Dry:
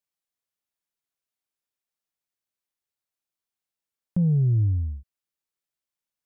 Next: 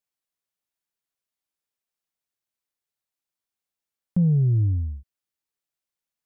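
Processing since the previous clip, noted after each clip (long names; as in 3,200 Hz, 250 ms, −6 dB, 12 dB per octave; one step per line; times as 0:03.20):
dynamic equaliser 250 Hz, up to +5 dB, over −36 dBFS, Q 1.5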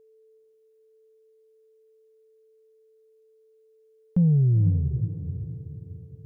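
steady tone 440 Hz −55 dBFS
feedback delay with all-pass diffusion 475 ms, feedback 45%, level −9 dB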